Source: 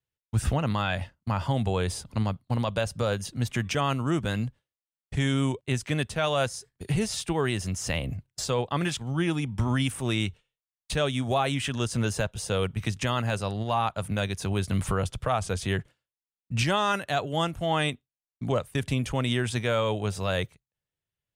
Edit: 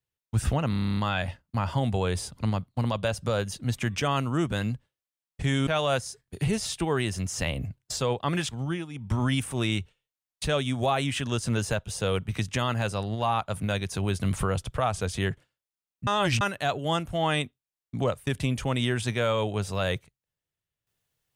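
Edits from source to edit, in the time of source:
0.7 stutter 0.03 s, 10 plays
5.4–6.15 cut
9.09–9.63 dip -13.5 dB, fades 0.26 s
16.55–16.89 reverse

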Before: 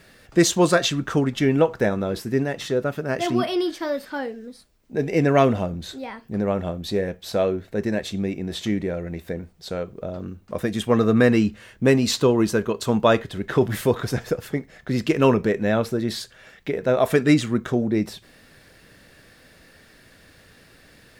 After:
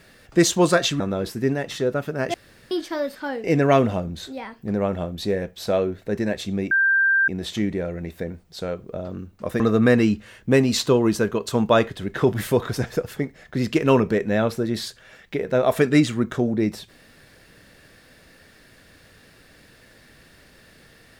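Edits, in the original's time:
1–1.9 cut
3.24–3.61 room tone
4.34–5.1 cut
8.37 add tone 1580 Hz -15 dBFS 0.57 s
10.69–10.94 cut

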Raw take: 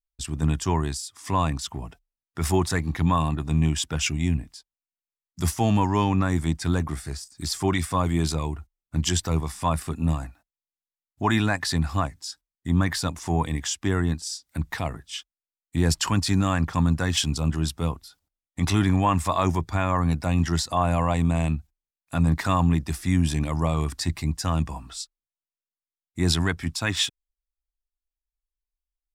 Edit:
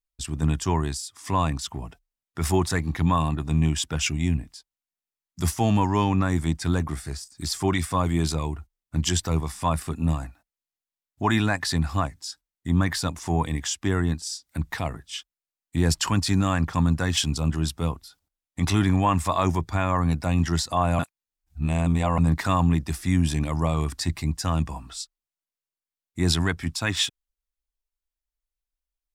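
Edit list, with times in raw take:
20.99–22.18 reverse

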